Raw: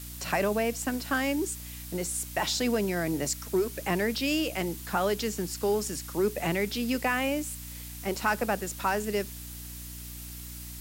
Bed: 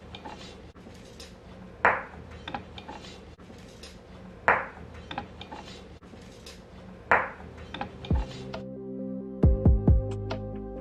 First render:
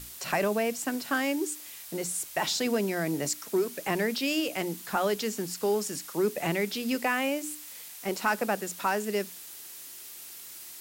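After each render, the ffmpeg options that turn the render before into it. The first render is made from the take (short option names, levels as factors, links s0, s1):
-af "bandreject=f=60:t=h:w=6,bandreject=f=120:t=h:w=6,bandreject=f=180:t=h:w=6,bandreject=f=240:t=h:w=6,bandreject=f=300:t=h:w=6"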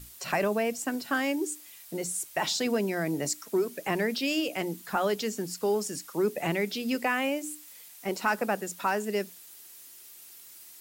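-af "afftdn=nr=7:nf=-45"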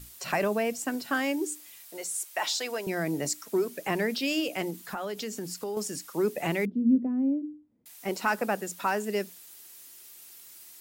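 -filter_complex "[0:a]asettb=1/sr,asplit=3[s0][s1][s2];[s0]atrim=end=1.884[s3];[s1]atrim=start=1.88:end=2.87,asetpts=PTS-STARTPTS,afade=t=in:d=0.004:c=qsin,afade=t=out:st=0.986:d=0.004:c=qsin,highpass=580[s4];[s2]atrim=start=2.866[s5];[s3][s4]acrossfade=d=0.004:c1=hsin:c2=qsin[s6];[s6][s5]acrossfade=d=0.004:c1=qsin:c2=hsin,asettb=1/sr,asplit=3[s7][s8][s9];[s7]atrim=end=4.704[s10];[s8]atrim=start=4.7:end=5.77,asetpts=PTS-STARTPTS,afade=t=in:d=0.004:c=qsin,afade=t=out:st=1.066:d=0.004:c=qsin,acompressor=threshold=0.0282:ratio=4:attack=3.2:release=140:knee=1:detection=peak[s11];[s9]atrim=start=5.766[s12];[s10][s11]acrossfade=d=0.004:c1=hsin:c2=qsin[s13];[s13][s12]acrossfade=d=0.004:c1=qsin:c2=hsin,asettb=1/sr,asplit=3[s14][s15][s16];[s14]atrim=end=6.654[s17];[s15]atrim=start=6.65:end=7.86,asetpts=PTS-STARTPTS,afade=t=in:d=0.004:c=qsin,afade=t=out:st=1.206:d=0.004:c=qsin,lowpass=f=250:t=q:w=2.9[s18];[s16]atrim=start=7.856[s19];[s17][s18]acrossfade=d=0.004:c1=hsin:c2=qsin[s20];[s20][s19]acrossfade=d=0.004:c1=qsin:c2=hsin"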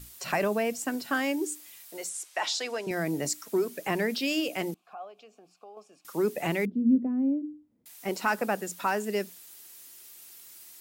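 -filter_complex "[0:a]asettb=1/sr,asplit=3[s0][s1][s2];[s0]atrim=end=2.094[s3];[s1]atrim=start=2.09:end=2.91,asetpts=PTS-STARTPTS,afade=t=in:d=0.004:c=qsin,afade=t=out:st=0.816:d=0.004:c=qsin,highpass=160,lowpass=7900[s4];[s2]atrim=start=2.906[s5];[s3][s4]acrossfade=d=0.004:c1=hsin:c2=qsin[s6];[s6][s5]acrossfade=d=0.004:c1=qsin:c2=hsin,asettb=1/sr,asplit=3[s7][s8][s9];[s7]atrim=end=4.744[s10];[s8]atrim=start=4.74:end=6.05,asetpts=PTS-STARTPTS,afade=t=in:d=0.004:c=qsin,afade=t=out:st=1.306:d=0.004:c=qsin,asplit=3[s11][s12][s13];[s11]bandpass=f=730:t=q:w=8,volume=1[s14];[s12]bandpass=f=1090:t=q:w=8,volume=0.501[s15];[s13]bandpass=f=2440:t=q:w=8,volume=0.355[s16];[s14][s15][s16]amix=inputs=3:normalize=0[s17];[s9]atrim=start=6.046[s18];[s10][s17]acrossfade=d=0.004:c1=hsin:c2=qsin[s19];[s19][s18]acrossfade=d=0.004:c1=qsin:c2=hsin"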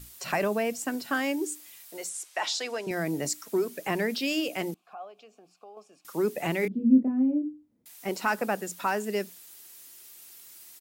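-filter_complex "[0:a]asplit=3[s0][s1][s2];[s0]afade=t=out:st=6.62:d=0.02[s3];[s1]asplit=2[s4][s5];[s5]adelay=27,volume=0.708[s6];[s4][s6]amix=inputs=2:normalize=0,afade=t=in:st=6.62:d=0.02,afade=t=out:st=7.48:d=0.02[s7];[s2]afade=t=in:st=7.48:d=0.02[s8];[s3][s7][s8]amix=inputs=3:normalize=0"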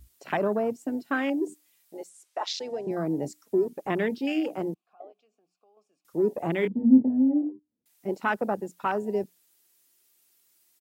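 -af "equalizer=f=330:w=0.98:g=3,afwtdn=0.0282"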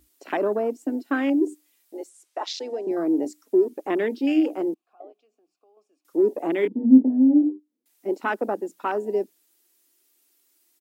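-af "lowshelf=f=200:t=q:w=3:g=-13"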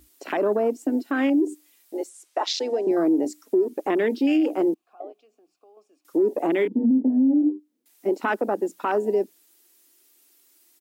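-filter_complex "[0:a]asplit=2[s0][s1];[s1]acompressor=threshold=0.0501:ratio=6,volume=1[s2];[s0][s2]amix=inputs=2:normalize=0,alimiter=limit=0.2:level=0:latency=1:release=89"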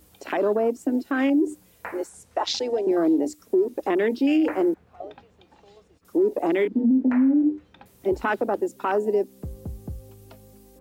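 -filter_complex "[1:a]volume=0.188[s0];[0:a][s0]amix=inputs=2:normalize=0"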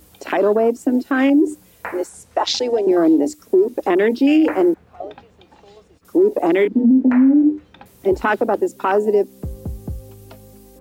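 -af "volume=2.11"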